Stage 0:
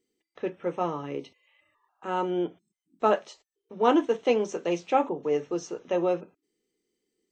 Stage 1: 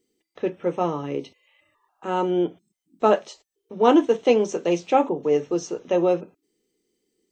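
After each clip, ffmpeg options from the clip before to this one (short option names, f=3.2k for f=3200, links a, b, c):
-af "equalizer=f=1.5k:t=o:w=1.9:g=-4.5,volume=6.5dB"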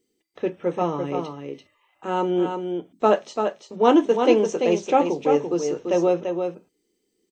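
-af "aecho=1:1:340:0.501"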